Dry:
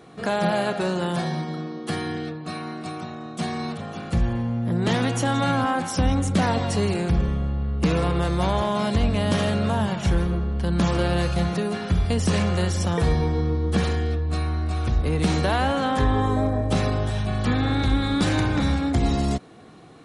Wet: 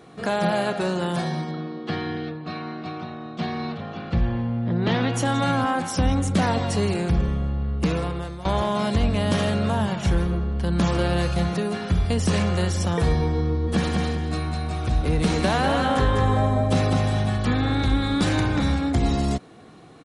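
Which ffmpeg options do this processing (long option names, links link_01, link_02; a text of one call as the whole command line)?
ffmpeg -i in.wav -filter_complex "[0:a]asettb=1/sr,asplit=3[link_01][link_02][link_03];[link_01]atrim=end=1.514[link_04];[link_02]atrim=start=1.51:end=5.14,asetpts=PTS-STARTPTS,afade=type=in:duration=0.004:curve=qsin,afade=type=out:start_time=3.626:duration=0.004:curve=qsin,lowpass=frequency=4500:width=0.5412,lowpass=frequency=4500:width=1.3066[link_05];[link_03]atrim=start=5.136[link_06];[link_04][link_05]acrossfade=duration=0.004:curve1=hsin:curve2=qsin[link_07];[link_07][link_06]acrossfade=duration=0.004:curve1=qsin:curve2=hsin,asplit=3[link_08][link_09][link_10];[link_08]afade=type=out:start_time=13.67:duration=0.02[link_11];[link_09]aecho=1:1:201|402|603|804:0.668|0.174|0.0452|0.0117,afade=type=in:start_time=13.67:duration=0.02,afade=type=out:start_time=17.36:duration=0.02[link_12];[link_10]afade=type=in:start_time=17.36:duration=0.02[link_13];[link_11][link_12][link_13]amix=inputs=3:normalize=0,asplit=2[link_14][link_15];[link_14]atrim=end=8.45,asetpts=PTS-STARTPTS,afade=type=out:start_time=7.73:duration=0.72:silence=0.141254[link_16];[link_15]atrim=start=8.45,asetpts=PTS-STARTPTS,afade=type=in:duration=0.004:curve=hsin:silence=0.141254[link_17];[link_16][link_17]concat=n=2:v=0:a=1" out.wav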